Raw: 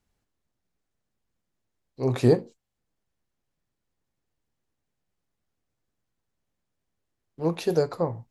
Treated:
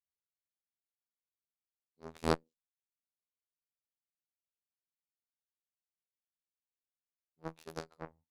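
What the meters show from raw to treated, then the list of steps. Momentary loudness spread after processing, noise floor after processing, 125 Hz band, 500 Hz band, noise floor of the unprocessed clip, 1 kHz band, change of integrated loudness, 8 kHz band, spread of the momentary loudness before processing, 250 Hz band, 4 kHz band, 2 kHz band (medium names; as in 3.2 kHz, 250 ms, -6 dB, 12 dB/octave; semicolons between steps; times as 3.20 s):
18 LU, under -85 dBFS, -18.0 dB, -16.5 dB, -82 dBFS, -6.0 dB, -14.0 dB, -8.5 dB, 8 LU, -15.0 dB, -7.5 dB, -5.5 dB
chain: robot voice 80.8 Hz; Chebyshev shaper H 3 -10 dB, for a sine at -6 dBFS; trim -4 dB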